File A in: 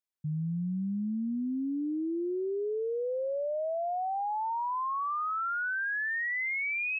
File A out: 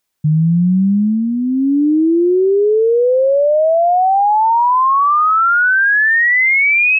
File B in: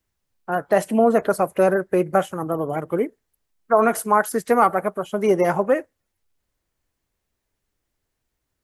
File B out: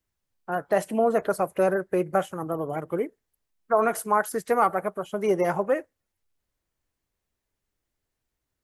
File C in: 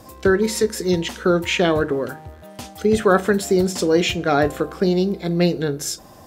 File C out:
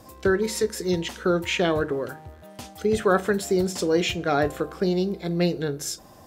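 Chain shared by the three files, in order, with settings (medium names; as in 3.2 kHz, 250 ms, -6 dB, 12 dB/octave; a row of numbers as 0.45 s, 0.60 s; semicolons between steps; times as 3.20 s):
dynamic bell 240 Hz, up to -5 dB, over -38 dBFS, Q 4.6; peak normalisation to -9 dBFS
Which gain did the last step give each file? +20.0 dB, -5.0 dB, -4.5 dB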